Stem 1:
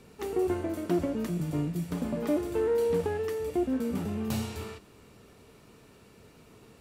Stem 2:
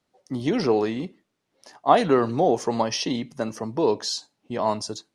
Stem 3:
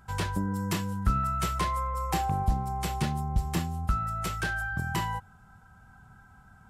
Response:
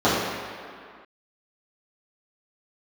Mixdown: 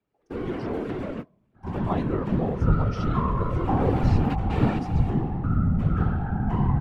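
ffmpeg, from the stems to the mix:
-filter_complex "[0:a]acrossover=split=3700[link_01][link_02];[link_02]acompressor=threshold=-55dB:ratio=4:attack=1:release=60[link_03];[link_01][link_03]amix=inputs=2:normalize=0,asplit=2[link_04][link_05];[link_05]highpass=frequency=720:poles=1,volume=29dB,asoftclip=type=tanh:threshold=-16dB[link_06];[link_04][link_06]amix=inputs=2:normalize=0,lowpass=frequency=6100:poles=1,volume=-6dB,volume=6dB,afade=type=out:start_time=1.55:duration=0.6:silence=0.421697,afade=type=in:start_time=3.35:duration=0.52:silence=0.251189[link_07];[1:a]volume=-6.5dB,asplit=2[link_08][link_09];[2:a]aemphasis=mode=reproduction:type=75kf,bandreject=frequency=50:width_type=h:width=6,bandreject=frequency=100:width_type=h:width=6,adelay=1550,volume=-4dB,asplit=2[link_10][link_11];[link_11]volume=-13.5dB[link_12];[link_09]apad=whole_len=300281[link_13];[link_07][link_13]sidechaingate=range=-37dB:threshold=-55dB:ratio=16:detection=peak[link_14];[3:a]atrim=start_sample=2205[link_15];[link_12][link_15]afir=irnorm=-1:irlink=0[link_16];[link_14][link_08][link_10][link_16]amix=inputs=4:normalize=0,bass=frequency=250:gain=10,treble=frequency=4000:gain=-14,bandreject=frequency=205.5:width_type=h:width=4,bandreject=frequency=411:width_type=h:width=4,bandreject=frequency=616.5:width_type=h:width=4,bandreject=frequency=822:width_type=h:width=4,bandreject=frequency=1027.5:width_type=h:width=4,afftfilt=real='hypot(re,im)*cos(2*PI*random(0))':imag='hypot(re,im)*sin(2*PI*random(1))':win_size=512:overlap=0.75"

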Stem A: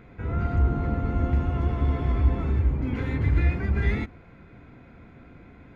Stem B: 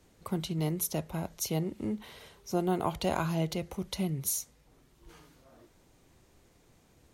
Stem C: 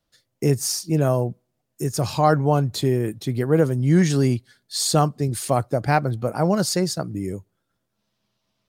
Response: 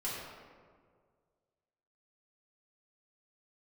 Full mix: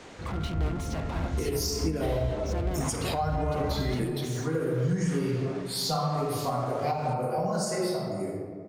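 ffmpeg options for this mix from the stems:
-filter_complex "[0:a]volume=-7.5dB[link_01];[1:a]asoftclip=type=hard:threshold=-31dB,lowpass=frequency=8700:width=0.5412,lowpass=frequency=8700:width=1.3066,asplit=2[link_02][link_03];[link_03]highpass=frequency=720:poles=1,volume=33dB,asoftclip=type=tanh:threshold=-28.5dB[link_04];[link_02][link_04]amix=inputs=2:normalize=0,lowpass=frequency=2300:poles=1,volume=-6dB,volume=-2dB,asplit=2[link_05][link_06];[2:a]bass=frequency=250:gain=-4,treble=frequency=4000:gain=2,asplit=2[link_07][link_08];[link_08]afreqshift=1.9[link_09];[link_07][link_09]amix=inputs=2:normalize=1,adelay=950,volume=1.5dB,asplit=2[link_10][link_11];[link_11]volume=-6.5dB[link_12];[link_06]apad=whole_len=425048[link_13];[link_10][link_13]sidechaingate=range=-33dB:threshold=-35dB:ratio=16:detection=peak[link_14];[3:a]atrim=start_sample=2205[link_15];[link_12][link_15]afir=irnorm=-1:irlink=0[link_16];[link_01][link_05][link_14][link_16]amix=inputs=4:normalize=0,acrossover=split=140[link_17][link_18];[link_18]acompressor=threshold=-24dB:ratio=6[link_19];[link_17][link_19]amix=inputs=2:normalize=0,alimiter=limit=-18.5dB:level=0:latency=1:release=157"

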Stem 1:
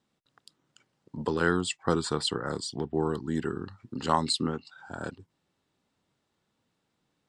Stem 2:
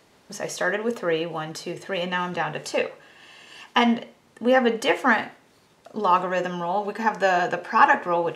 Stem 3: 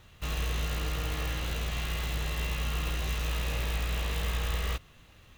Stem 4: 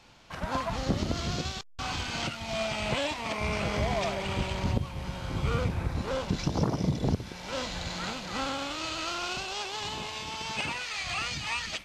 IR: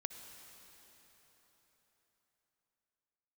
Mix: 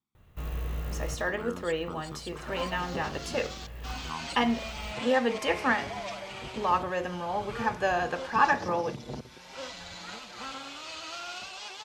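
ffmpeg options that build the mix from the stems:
-filter_complex "[0:a]aecho=1:1:0.9:0.97,volume=-17.5dB,asplit=2[link_01][link_02];[1:a]adelay=600,volume=-6.5dB[link_03];[2:a]equalizer=frequency=4700:width=0.44:gain=-14.5,adelay=150,volume=-1.5dB[link_04];[3:a]lowshelf=frequency=230:gain=-11.5,asplit=2[link_05][link_06];[link_06]adelay=6.5,afreqshift=0.74[link_07];[link_05][link_07]amix=inputs=2:normalize=1,adelay=2050,volume=-2.5dB[link_08];[link_02]apad=whole_len=243445[link_09];[link_04][link_09]sidechaincompress=threshold=-53dB:ratio=8:attack=7.5:release=602[link_10];[link_01][link_03][link_10][link_08]amix=inputs=4:normalize=0"

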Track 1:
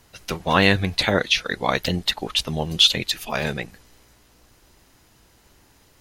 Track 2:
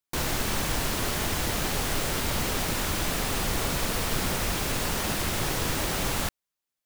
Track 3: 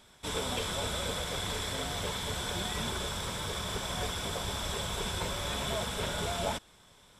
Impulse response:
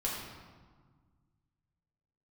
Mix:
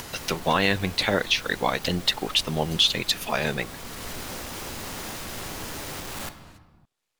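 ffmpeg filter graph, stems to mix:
-filter_complex "[0:a]acompressor=mode=upward:threshold=-26dB:ratio=2.5,alimiter=limit=-11.5dB:level=0:latency=1:release=342,volume=2dB,asplit=2[link_01][link_02];[1:a]asoftclip=type=tanh:threshold=-28dB,volume=-2dB,asplit=2[link_03][link_04];[link_04]volume=-11.5dB[link_05];[2:a]acrossover=split=420[link_06][link_07];[link_06]aeval=exprs='val(0)*(1-0.5/2+0.5/2*cos(2*PI*1.9*n/s))':channel_layout=same[link_08];[link_07]aeval=exprs='val(0)*(1-0.5/2-0.5/2*cos(2*PI*1.9*n/s))':channel_layout=same[link_09];[link_08][link_09]amix=inputs=2:normalize=0,aeval=exprs='abs(val(0))':channel_layout=same,volume=-17dB[link_10];[link_02]apad=whole_len=302195[link_11];[link_03][link_11]sidechaincompress=threshold=-40dB:ratio=8:attack=16:release=605[link_12];[3:a]atrim=start_sample=2205[link_13];[link_05][link_13]afir=irnorm=-1:irlink=0[link_14];[link_01][link_12][link_10][link_14]amix=inputs=4:normalize=0,lowshelf=frequency=110:gain=-8"

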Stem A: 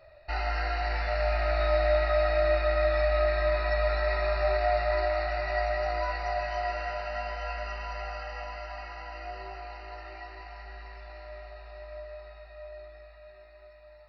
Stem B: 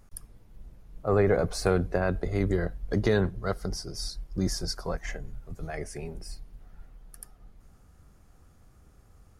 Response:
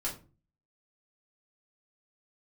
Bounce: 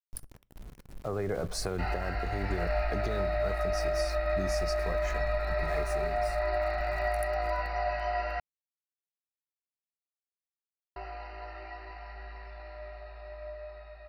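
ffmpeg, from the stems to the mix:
-filter_complex "[0:a]lowpass=frequency=3200:poles=1,adelay=1500,volume=0dB,asplit=3[link_01][link_02][link_03];[link_01]atrim=end=8.4,asetpts=PTS-STARTPTS,afade=type=out:start_time=8.396:duration=0.004:curve=hsin[link_04];[link_02]atrim=start=8.4:end=10.96,asetpts=PTS-STARTPTS,volume=0[link_05];[link_03]atrim=start=10.96,asetpts=PTS-STARTPTS,afade=type=in:duration=0.004:curve=hsin[link_06];[link_04][link_05][link_06]concat=n=3:v=0:a=1[link_07];[1:a]acompressor=threshold=-26dB:ratio=6,aeval=exprs='val(0)*gte(abs(val(0)),0.00562)':channel_layout=same,volume=-0.5dB,asplit=2[link_08][link_09];[link_09]volume=-21dB[link_10];[2:a]atrim=start_sample=2205[link_11];[link_10][link_11]afir=irnorm=-1:irlink=0[link_12];[link_07][link_08][link_12]amix=inputs=3:normalize=0,alimiter=limit=-20.5dB:level=0:latency=1:release=351"

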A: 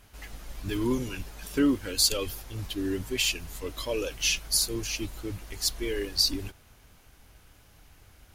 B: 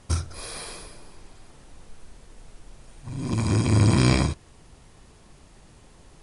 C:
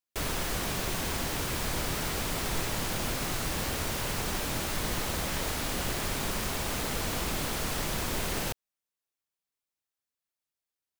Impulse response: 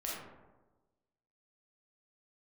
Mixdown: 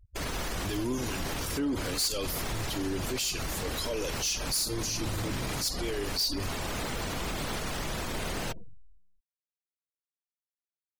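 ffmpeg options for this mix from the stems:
-filter_complex "[0:a]highshelf=frequency=3600:width_type=q:width=1.5:gain=6.5,volume=2dB,asplit=3[link_01][link_02][link_03];[link_02]volume=-17dB[link_04];[1:a]adelay=1350,volume=-13dB[link_05];[2:a]volume=0dB,asplit=2[link_06][link_07];[link_07]volume=-13.5dB[link_08];[link_03]apad=whole_len=484854[link_09];[link_06][link_09]sidechaincompress=threshold=-26dB:ratio=8:attack=16:release=180[link_10];[3:a]atrim=start_sample=2205[link_11];[link_04][link_08]amix=inputs=2:normalize=0[link_12];[link_12][link_11]afir=irnorm=-1:irlink=0[link_13];[link_01][link_05][link_10][link_13]amix=inputs=4:normalize=0,afftfilt=real='re*gte(hypot(re,im),0.0158)':imag='im*gte(hypot(re,im),0.0158)':win_size=1024:overlap=0.75,asoftclip=type=tanh:threshold=-14.5dB,alimiter=level_in=0.5dB:limit=-24dB:level=0:latency=1:release=32,volume=-0.5dB"

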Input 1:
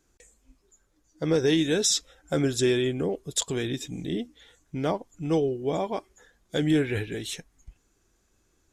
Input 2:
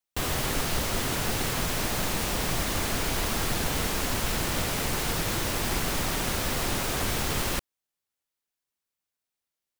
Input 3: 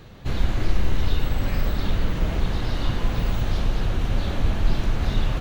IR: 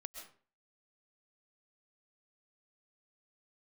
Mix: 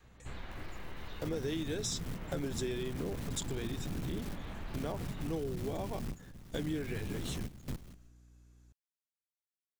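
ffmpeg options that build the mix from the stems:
-filter_complex "[0:a]aeval=exprs='val(0)+0.00224*(sin(2*PI*60*n/s)+sin(2*PI*2*60*n/s)/2+sin(2*PI*3*60*n/s)/3+sin(2*PI*4*60*n/s)/4+sin(2*PI*5*60*n/s)/5)':channel_layout=same,equalizer=frequency=190:width_type=o:width=1.1:gain=-7,volume=-5dB,asplit=2[link_01][link_02];[1:a]acrossover=split=280[link_03][link_04];[link_04]acompressor=threshold=-47dB:ratio=3[link_05];[link_03][link_05]amix=inputs=2:normalize=0,asoftclip=type=tanh:threshold=-34.5dB,adelay=350,volume=1.5dB,asplit=2[link_06][link_07];[link_07]volume=-22dB[link_08];[2:a]equalizer=frequency=1000:width_type=o:width=1:gain=4,equalizer=frequency=2000:width_type=o:width=1:gain=5,equalizer=frequency=8000:width_type=o:width=1:gain=-6,acrossover=split=250[link_09][link_10];[link_09]acompressor=threshold=-22dB:ratio=6[link_11];[link_11][link_10]amix=inputs=2:normalize=0,volume=-17.5dB[link_12];[link_02]apad=whole_len=447480[link_13];[link_06][link_13]sidechaingate=range=-21dB:threshold=-51dB:ratio=16:detection=peak[link_14];[3:a]atrim=start_sample=2205[link_15];[link_08][link_15]afir=irnorm=-1:irlink=0[link_16];[link_01][link_14][link_12][link_16]amix=inputs=4:normalize=0,adynamicequalizer=threshold=0.00562:dfrequency=180:dqfactor=0.77:tfrequency=180:tqfactor=0.77:attack=5:release=100:ratio=0.375:range=3:mode=boostabove:tftype=bell,acompressor=threshold=-36dB:ratio=3"

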